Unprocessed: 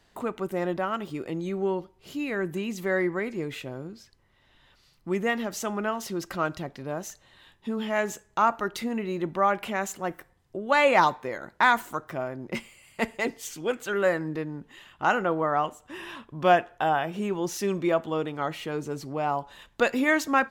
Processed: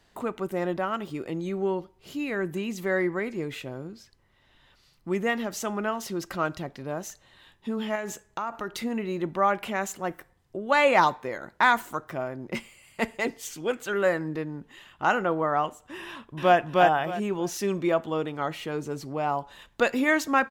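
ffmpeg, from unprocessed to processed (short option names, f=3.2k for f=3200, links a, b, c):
-filter_complex "[0:a]asettb=1/sr,asplit=3[a][b][c];[a]atrim=end=7.954[d];[b]atrim=start=7.95:end=8.78,asetpts=PTS-STARTPTS,afade=t=in:d=0.004:c=qsin,afade=t=out:st=0.826:d=0.004:c=qsin,acompressor=threshold=-27dB:ratio=6:attack=3.2:release=140:knee=1:detection=peak[e];[c]atrim=start=8.776[f];[d][e]acrossfade=d=0.004:c1=hsin:c2=qsin[g];[g][f]acrossfade=d=0.004:c1=qsin:c2=hsin,asplit=2[h][i];[i]afade=t=in:st=16.06:d=0.01,afade=t=out:st=16.57:d=0.01,aecho=0:1:310|620|930:0.944061|0.188812|0.0377624[j];[h][j]amix=inputs=2:normalize=0"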